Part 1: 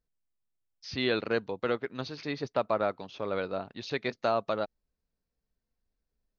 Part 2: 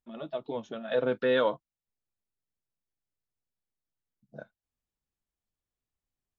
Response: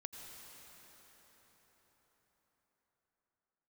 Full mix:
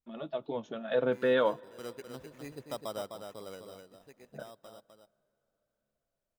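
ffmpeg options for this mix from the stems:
-filter_complex "[0:a]highshelf=f=2500:g=-8.5,acrusher=samples=10:mix=1:aa=0.000001,adelay=150,volume=0.299,afade=t=in:st=1.7:d=0.24:silence=0.266073,afade=t=out:st=3.29:d=0.56:silence=0.237137,asplit=3[s0][s1][s2];[s1]volume=0.112[s3];[s2]volume=0.531[s4];[1:a]volume=0.841,asplit=2[s5][s6];[s6]volume=0.133[s7];[2:a]atrim=start_sample=2205[s8];[s3][s7]amix=inputs=2:normalize=0[s9];[s9][s8]afir=irnorm=-1:irlink=0[s10];[s4]aecho=0:1:255:1[s11];[s0][s5][s10][s11]amix=inputs=4:normalize=0,adynamicequalizer=threshold=0.00355:dfrequency=2400:dqfactor=0.7:tfrequency=2400:tqfactor=0.7:attack=5:release=100:ratio=0.375:range=2:mode=cutabove:tftype=highshelf"

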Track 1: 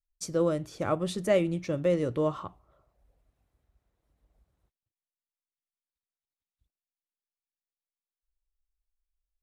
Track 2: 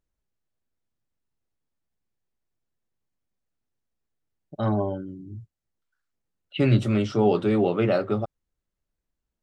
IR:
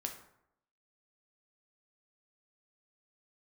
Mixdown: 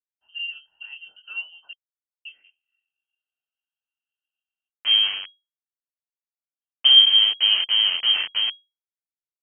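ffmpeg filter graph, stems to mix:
-filter_complex "[0:a]asplit=3[s0][s1][s2];[s0]bandpass=f=530:t=q:w=8,volume=1[s3];[s1]bandpass=f=1840:t=q:w=8,volume=0.501[s4];[s2]bandpass=f=2480:t=q:w=8,volume=0.355[s5];[s3][s4][s5]amix=inputs=3:normalize=0,flanger=delay=20:depth=6.9:speed=1.7,volume=1,asplit=3[s6][s7][s8];[s6]atrim=end=1.73,asetpts=PTS-STARTPTS,afade=t=out:st=1.726:d=0.004:c=hsin[s9];[s7]atrim=start=1.73:end=2.25,asetpts=PTS-STARTPTS,volume=0[s10];[s8]atrim=start=2.25,asetpts=PTS-STARTPTS,afade=t=in:d=0.004:c=hsin[s11];[s9][s10][s11]concat=n=3:v=0:a=1[s12];[1:a]aemphasis=mode=reproduction:type=riaa,bandreject=f=61.79:t=h:w=4,bandreject=f=123.58:t=h:w=4,bandreject=f=185.37:t=h:w=4,bandreject=f=247.16:t=h:w=4,bandreject=f=308.95:t=h:w=4,bandreject=f=370.74:t=h:w=4,bandreject=f=432.53:t=h:w=4,bandreject=f=494.32:t=h:w=4,aeval=exprs='val(0)*gte(abs(val(0)),0.133)':c=same,adelay=250,volume=0.422[s13];[s12][s13]amix=inputs=2:normalize=0,equalizer=f=150:w=1.8:g=10,lowpass=f=2800:t=q:w=0.5098,lowpass=f=2800:t=q:w=0.6013,lowpass=f=2800:t=q:w=0.9,lowpass=f=2800:t=q:w=2.563,afreqshift=-3300"

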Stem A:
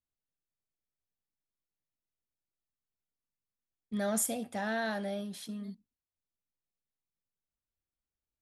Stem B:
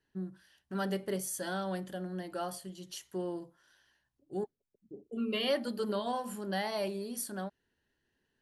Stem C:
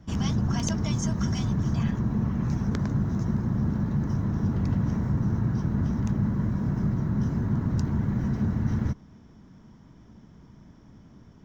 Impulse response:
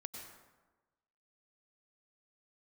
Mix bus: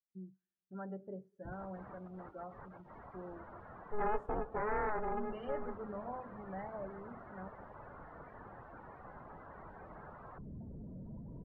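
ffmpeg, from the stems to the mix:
-filter_complex "[0:a]asoftclip=type=tanh:threshold=0.075,aeval=exprs='val(0)*sgn(sin(2*PI*210*n/s))':c=same,volume=1.12,asplit=3[s0][s1][s2];[s1]volume=0.224[s3];[1:a]volume=0.335,asplit=2[s4][s5];[s5]volume=0.335[s6];[2:a]acompressor=threshold=0.0282:ratio=1.5,aeval=exprs='0.0282*sin(PI/2*6.31*val(0)/0.0282)':c=same,alimiter=level_in=3.55:limit=0.0631:level=0:latency=1,volume=0.282,adelay=1450,volume=0.447[s7];[s2]apad=whole_len=568677[s8];[s7][s8]sidechaincompress=threshold=0.0251:ratio=8:attack=6.1:release=1360[s9];[3:a]atrim=start_sample=2205[s10];[s3][s6]amix=inputs=2:normalize=0[s11];[s11][s10]afir=irnorm=-1:irlink=0[s12];[s0][s4][s9][s12]amix=inputs=4:normalize=0,lowpass=1300,afftdn=nr=24:nf=-48,equalizer=f=320:t=o:w=1.2:g=-5"

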